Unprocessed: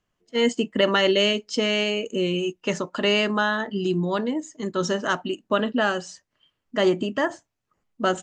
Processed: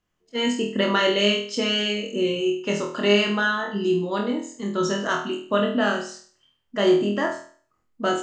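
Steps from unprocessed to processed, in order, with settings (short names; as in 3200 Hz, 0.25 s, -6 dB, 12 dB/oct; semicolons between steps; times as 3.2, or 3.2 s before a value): flutter echo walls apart 4.2 m, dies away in 0.46 s; gain -2.5 dB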